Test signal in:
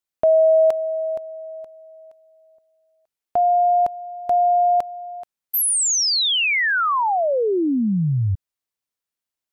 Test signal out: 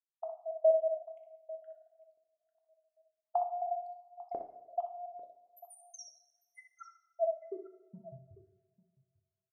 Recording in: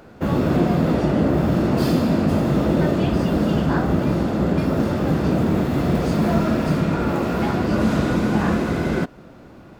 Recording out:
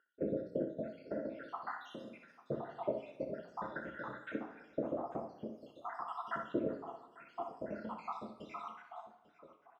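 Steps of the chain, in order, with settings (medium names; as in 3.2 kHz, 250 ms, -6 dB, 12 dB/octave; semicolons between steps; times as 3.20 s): random holes in the spectrogram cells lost 84%; compression 4:1, threshold -22 dBFS; LFO band-pass saw up 0.46 Hz 400–1600 Hz; multi-tap echo 62/846 ms -8/-19 dB; two-slope reverb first 0.74 s, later 2.6 s, from -22 dB, DRR 5 dB; trim -2.5 dB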